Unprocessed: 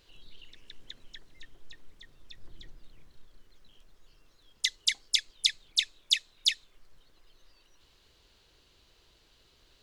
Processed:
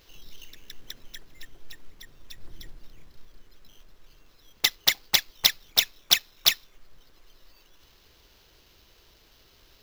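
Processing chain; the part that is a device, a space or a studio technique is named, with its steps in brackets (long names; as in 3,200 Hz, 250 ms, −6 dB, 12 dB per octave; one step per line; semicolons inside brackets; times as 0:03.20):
early companding sampler (sample-rate reduction 9,200 Hz, jitter 0%; log-companded quantiser 8 bits)
level +5.5 dB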